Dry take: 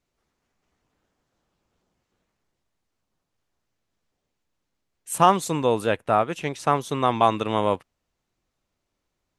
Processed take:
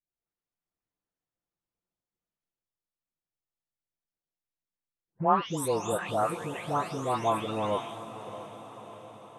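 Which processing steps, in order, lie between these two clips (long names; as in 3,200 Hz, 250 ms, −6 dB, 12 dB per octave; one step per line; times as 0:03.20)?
every frequency bin delayed by itself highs late, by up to 501 ms
noise gate −51 dBFS, range −14 dB
on a send: feedback delay with all-pass diffusion 626 ms, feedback 59%, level −12.5 dB
on the sum: level −6 dB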